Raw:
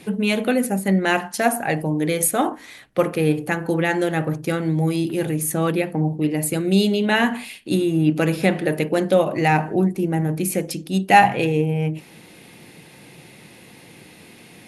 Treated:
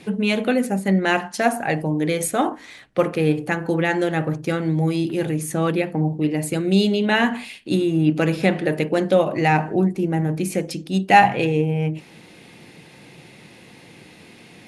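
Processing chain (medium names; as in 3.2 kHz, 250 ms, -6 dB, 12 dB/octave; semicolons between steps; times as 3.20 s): low-pass 7.8 kHz 12 dB/octave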